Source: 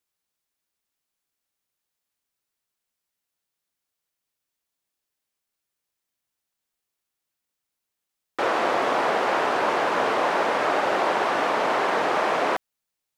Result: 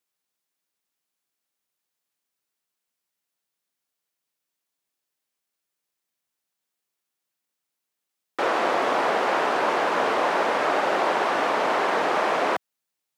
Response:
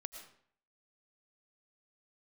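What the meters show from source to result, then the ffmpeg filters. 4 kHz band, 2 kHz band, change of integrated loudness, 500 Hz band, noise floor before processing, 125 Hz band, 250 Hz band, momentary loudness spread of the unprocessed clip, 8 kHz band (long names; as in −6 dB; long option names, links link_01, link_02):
0.0 dB, 0.0 dB, 0.0 dB, 0.0 dB, −84 dBFS, −2.0 dB, 0.0 dB, 3 LU, 0.0 dB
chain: -af "highpass=130"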